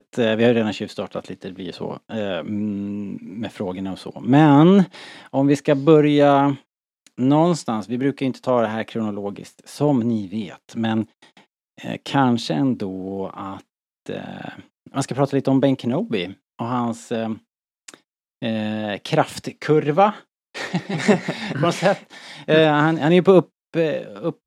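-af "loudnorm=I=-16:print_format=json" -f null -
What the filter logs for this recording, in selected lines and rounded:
"input_i" : "-20.0",
"input_tp" : "-1.1",
"input_lra" : "7.7",
"input_thresh" : "-30.9",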